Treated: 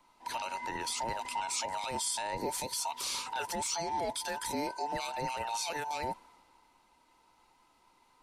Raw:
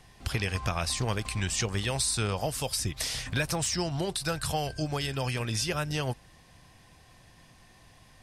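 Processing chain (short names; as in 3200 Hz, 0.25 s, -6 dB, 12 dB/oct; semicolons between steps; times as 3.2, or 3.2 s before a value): band inversion scrambler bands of 1000 Hz; limiter -24 dBFS, peak gain reduction 8.5 dB; three-band expander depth 40%; gain -1.5 dB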